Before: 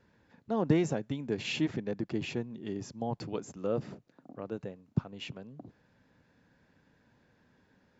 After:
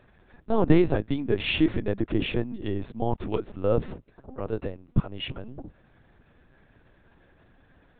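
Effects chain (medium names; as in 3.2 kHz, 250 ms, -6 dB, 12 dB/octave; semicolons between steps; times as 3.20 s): LPC vocoder at 8 kHz pitch kept; trim +8.5 dB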